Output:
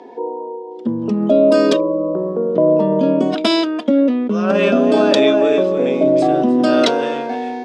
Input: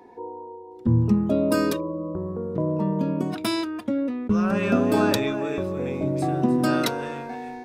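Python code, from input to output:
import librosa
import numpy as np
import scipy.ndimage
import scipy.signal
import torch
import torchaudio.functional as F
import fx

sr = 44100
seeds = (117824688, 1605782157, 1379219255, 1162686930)

p1 = fx.over_compress(x, sr, threshold_db=-24.0, ratio=-0.5)
p2 = x + F.gain(torch.from_numpy(p1), 0.5).numpy()
y = fx.cabinet(p2, sr, low_hz=190.0, low_slope=24, high_hz=7500.0, hz=(260.0, 440.0, 620.0, 3200.0, 4800.0), db=(5, 5, 10, 10, 3))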